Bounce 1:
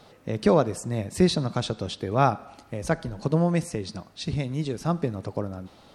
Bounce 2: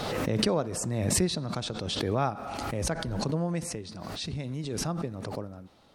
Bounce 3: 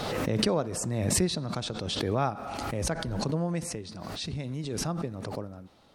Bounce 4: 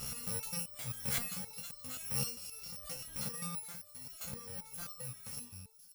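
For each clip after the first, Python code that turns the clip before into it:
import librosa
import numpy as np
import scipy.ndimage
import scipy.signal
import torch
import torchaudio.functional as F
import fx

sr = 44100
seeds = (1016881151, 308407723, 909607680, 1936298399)

y1 = fx.pre_swell(x, sr, db_per_s=22.0)
y1 = y1 * 10.0 ** (-8.0 / 20.0)
y2 = y1
y3 = fx.bit_reversed(y2, sr, seeds[0], block=128)
y3 = fx.echo_wet_highpass(y3, sr, ms=505, feedback_pct=53, hz=4200.0, wet_db=-12.5)
y3 = fx.resonator_held(y3, sr, hz=7.6, low_hz=68.0, high_hz=600.0)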